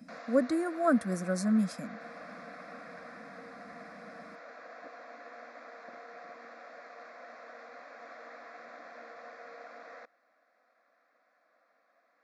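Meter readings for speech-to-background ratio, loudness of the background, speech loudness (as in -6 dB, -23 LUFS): 18.5 dB, -48.0 LUFS, -29.5 LUFS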